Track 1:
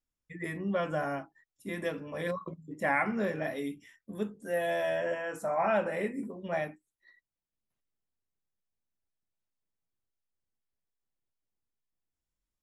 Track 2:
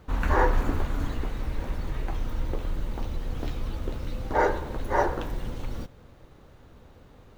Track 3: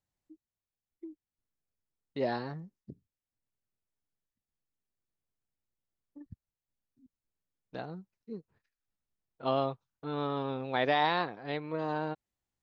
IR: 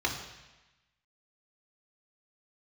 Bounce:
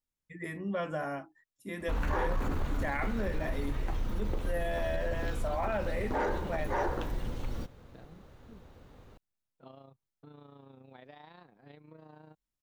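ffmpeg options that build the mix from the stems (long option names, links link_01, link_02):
-filter_complex "[0:a]volume=-2.5dB,asplit=2[link_01][link_02];[1:a]asoftclip=type=tanh:threshold=-15.5dB,adelay=1800,volume=-2.5dB[link_03];[2:a]equalizer=frequency=170:width=0.9:gain=7.5,acompressor=threshold=-36dB:ratio=5,tremolo=f=28:d=0.571,adelay=200,volume=-11.5dB[link_04];[link_02]apad=whole_len=565763[link_05];[link_04][link_05]sidechaincompress=threshold=-43dB:ratio=8:attack=16:release=610[link_06];[link_01][link_03][link_06]amix=inputs=3:normalize=0,alimiter=limit=-23.5dB:level=0:latency=1:release=23"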